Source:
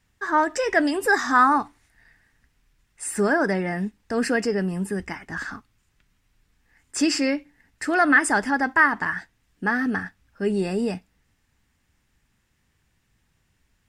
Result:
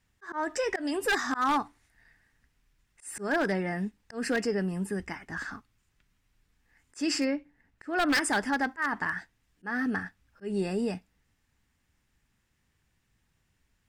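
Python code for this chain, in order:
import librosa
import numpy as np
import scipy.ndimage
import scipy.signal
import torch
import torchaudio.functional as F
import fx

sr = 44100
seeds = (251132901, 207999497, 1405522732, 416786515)

y = fx.high_shelf(x, sr, hz=fx.line((7.24, 2200.0), (8.13, 3900.0)), db=-10.5, at=(7.24, 8.13), fade=0.02)
y = fx.auto_swell(y, sr, attack_ms=166.0)
y = 10.0 ** (-14.5 / 20.0) * (np.abs((y / 10.0 ** (-14.5 / 20.0) + 3.0) % 4.0 - 2.0) - 1.0)
y = y * 10.0 ** (-5.0 / 20.0)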